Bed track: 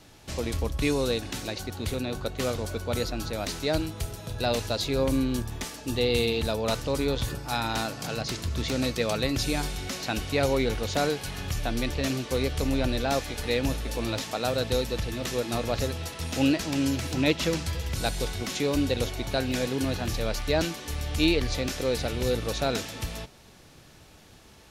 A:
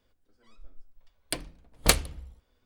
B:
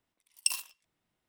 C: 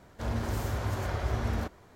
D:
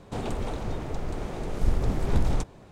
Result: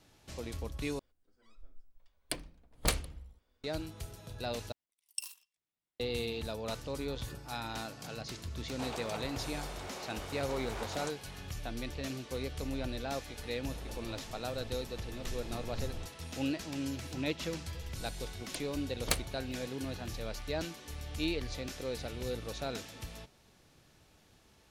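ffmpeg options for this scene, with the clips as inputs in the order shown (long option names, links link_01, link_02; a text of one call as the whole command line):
ffmpeg -i bed.wav -i cue0.wav -i cue1.wav -i cue2.wav -i cue3.wav -filter_complex "[1:a]asplit=2[link_01][link_02];[4:a]asplit=2[link_03][link_04];[0:a]volume=-11dB[link_05];[link_01]alimiter=level_in=7dB:limit=-1dB:release=50:level=0:latency=1[link_06];[2:a]highshelf=frequency=2200:gain=8[link_07];[link_03]highpass=630[link_08];[link_05]asplit=3[link_09][link_10][link_11];[link_09]atrim=end=0.994[link_12];[link_06]atrim=end=2.65,asetpts=PTS-STARTPTS,volume=-12dB[link_13];[link_10]atrim=start=3.636:end=4.724[link_14];[link_07]atrim=end=1.28,asetpts=PTS-STARTPTS,volume=-17.5dB[link_15];[link_11]atrim=start=5.996[link_16];[link_08]atrim=end=2.71,asetpts=PTS-STARTPTS,volume=-3.5dB,afade=type=in:duration=0.004:curve=hsin,afade=type=out:start_time=2.706:duration=0.004:curve=hsin,adelay=8670[link_17];[link_04]atrim=end=2.71,asetpts=PTS-STARTPTS,volume=-18dB,afade=type=in:duration=0.004:curve=hsin,afade=type=out:start_time=2.706:duration=0.004:curve=hsin,adelay=13630[link_18];[link_02]atrim=end=2.65,asetpts=PTS-STARTPTS,volume=-10.5dB,afade=type=in:duration=0.004:curve=hsin,afade=type=out:start_time=2.646:duration=0.004:curve=hsin,adelay=17220[link_19];[link_12][link_13]acrossfade=duration=0.004:curve1=hsin:curve2=hsin[link_20];[link_20][link_14]acrossfade=duration=0.004:curve1=hsin:curve2=hsin[link_21];[link_21][link_15]acrossfade=duration=0.004:curve1=hsin:curve2=hsin[link_22];[link_22][link_16]acrossfade=duration=0.004:curve1=hsin:curve2=hsin[link_23];[link_23][link_17][link_18][link_19]amix=inputs=4:normalize=0" out.wav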